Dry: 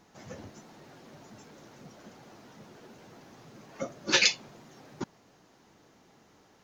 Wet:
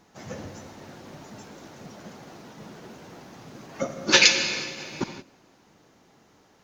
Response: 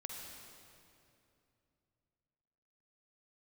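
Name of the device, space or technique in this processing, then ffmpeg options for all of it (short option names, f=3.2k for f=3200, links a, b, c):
keyed gated reverb: -filter_complex "[0:a]asplit=3[a][b][c];[1:a]atrim=start_sample=2205[d];[b][d]afir=irnorm=-1:irlink=0[e];[c]apad=whole_len=292734[f];[e][f]sidechaingate=range=-18dB:threshold=-53dB:ratio=16:detection=peak,volume=4dB[g];[a][g]amix=inputs=2:normalize=0,volume=1dB"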